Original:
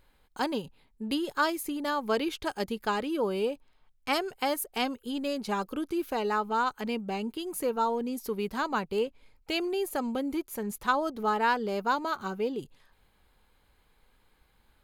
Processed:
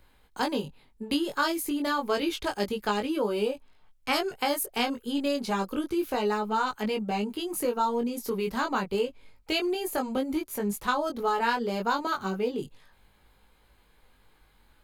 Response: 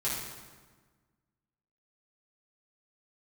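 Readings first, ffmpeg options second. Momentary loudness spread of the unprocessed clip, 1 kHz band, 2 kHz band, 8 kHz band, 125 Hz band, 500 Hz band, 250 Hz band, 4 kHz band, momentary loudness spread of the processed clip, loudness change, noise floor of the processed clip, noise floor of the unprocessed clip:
6 LU, +0.5 dB, +1.0 dB, +3.5 dB, +3.5 dB, +2.0 dB, +2.5 dB, +3.5 dB, 4 LU, +1.5 dB, -62 dBFS, -67 dBFS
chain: -filter_complex "[0:a]flanger=delay=19:depth=2.3:speed=0.3,acrossover=split=150|3000[a][b][c];[b]acompressor=threshold=-33dB:ratio=2[d];[a][d][c]amix=inputs=3:normalize=0,volume=7dB"

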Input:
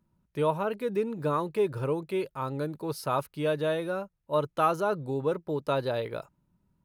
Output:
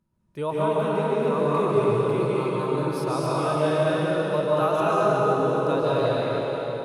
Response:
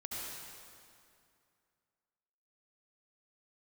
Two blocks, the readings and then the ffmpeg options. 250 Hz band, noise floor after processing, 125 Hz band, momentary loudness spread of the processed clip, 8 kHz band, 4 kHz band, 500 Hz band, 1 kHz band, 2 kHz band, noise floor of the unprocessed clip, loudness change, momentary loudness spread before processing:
+7.0 dB, -56 dBFS, +7.5 dB, 5 LU, +5.5 dB, +6.0 dB, +7.0 dB, +6.5 dB, +6.0 dB, -77 dBFS, +6.5 dB, 7 LU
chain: -filter_complex "[1:a]atrim=start_sample=2205,asetrate=22050,aresample=44100[a];[0:a][a]afir=irnorm=-1:irlink=0"

